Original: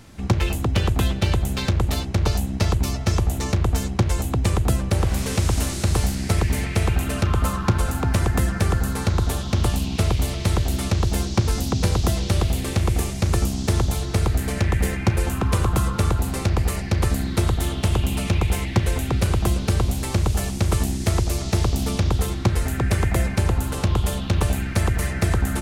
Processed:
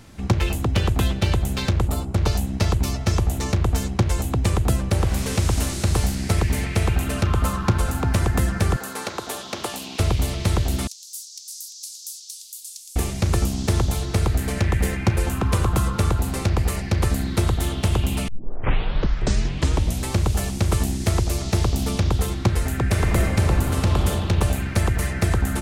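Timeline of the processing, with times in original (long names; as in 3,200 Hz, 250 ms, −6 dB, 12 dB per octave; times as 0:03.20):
0:01.88–0:02.15: gain on a spectral selection 1,500–6,800 Hz −10 dB
0:08.76–0:10.00: high-pass filter 390 Hz
0:10.87–0:12.96: inverse Chebyshev high-pass filter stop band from 1,200 Hz, stop band 70 dB
0:18.28: tape start 1.80 s
0:22.88–0:24.07: thrown reverb, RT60 2.8 s, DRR 2 dB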